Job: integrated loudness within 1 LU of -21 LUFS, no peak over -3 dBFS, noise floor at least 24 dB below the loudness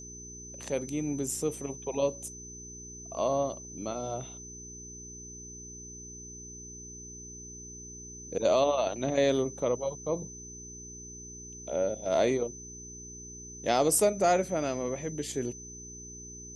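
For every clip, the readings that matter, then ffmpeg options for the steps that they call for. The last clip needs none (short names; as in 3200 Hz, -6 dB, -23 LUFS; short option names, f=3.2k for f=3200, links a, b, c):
hum 60 Hz; harmonics up to 420 Hz; hum level -46 dBFS; steady tone 6100 Hz; tone level -44 dBFS; loudness -30.0 LUFS; peak -12.5 dBFS; loudness target -21.0 LUFS
-> -af "bandreject=f=60:t=h:w=4,bandreject=f=120:t=h:w=4,bandreject=f=180:t=h:w=4,bandreject=f=240:t=h:w=4,bandreject=f=300:t=h:w=4,bandreject=f=360:t=h:w=4,bandreject=f=420:t=h:w=4"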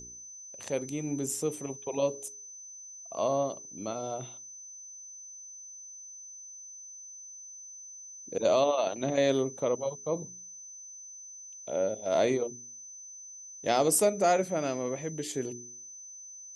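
hum none; steady tone 6100 Hz; tone level -44 dBFS
-> -af "bandreject=f=6.1k:w=30"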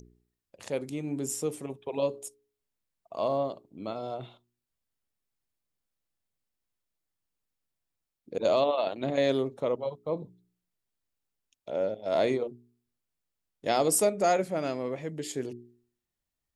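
steady tone none; loudness -30.0 LUFS; peak -12.5 dBFS; loudness target -21.0 LUFS
-> -af "volume=9dB"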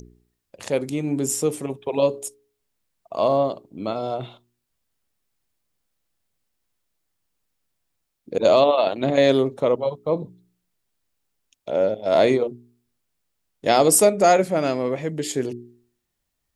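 loudness -21.0 LUFS; peak -3.5 dBFS; noise floor -78 dBFS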